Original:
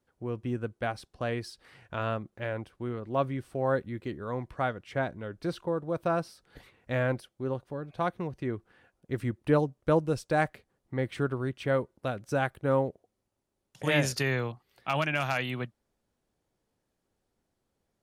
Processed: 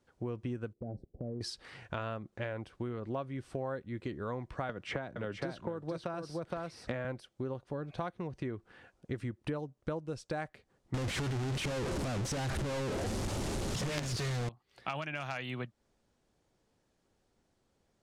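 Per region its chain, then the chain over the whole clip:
0.73–1.41 inverse Chebyshev low-pass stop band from 1100 Hz + dynamic EQ 190 Hz, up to +6 dB, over -48 dBFS, Q 1.1 + compressor, threshold -40 dBFS
4.69–7.05 echo 0.467 s -6 dB + three-band squash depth 100%
10.94–14.49 zero-crossing step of -27.5 dBFS + companded quantiser 2-bit + low shelf 320 Hz +8 dB
whole clip: Chebyshev low-pass 7300 Hz, order 2; compressor 8:1, threshold -40 dBFS; gain +5.5 dB

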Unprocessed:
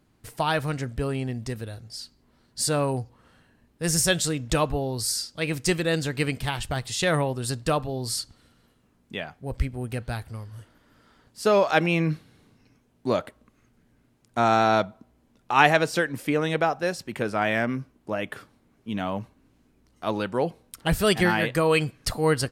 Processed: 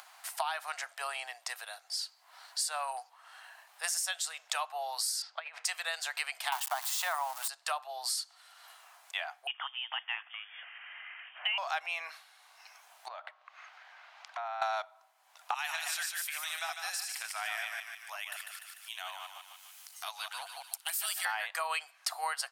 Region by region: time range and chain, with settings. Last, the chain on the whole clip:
5.22–5.65 LPF 2300 Hz + negative-ratio compressor -34 dBFS, ratio -0.5
6.52–7.48 switching spikes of -19.5 dBFS + bell 950 Hz +14.5 dB 1.3 oct
9.47–11.58 HPF 540 Hz + inverted band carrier 3400 Hz
13.08–14.62 compressor 8:1, threshold -35 dBFS + air absorption 240 m + mismatched tape noise reduction encoder only
15.54–21.25 reverse delay 0.113 s, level -4.5 dB + pre-emphasis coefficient 0.97 + thinning echo 0.148 s, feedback 39%, high-pass 1100 Hz, level -6.5 dB
whole clip: upward compressor, threshold -38 dBFS; Chebyshev high-pass 700 Hz, order 5; compressor 8:1, threshold -35 dBFS; gain +4 dB

